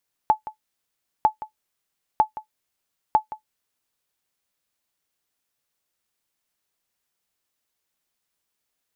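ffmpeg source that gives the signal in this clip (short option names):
-f lavfi -i "aevalsrc='0.447*(sin(2*PI*863*mod(t,0.95))*exp(-6.91*mod(t,0.95)/0.11)+0.15*sin(2*PI*863*max(mod(t,0.95)-0.17,0))*exp(-6.91*max(mod(t,0.95)-0.17,0)/0.11))':d=3.8:s=44100"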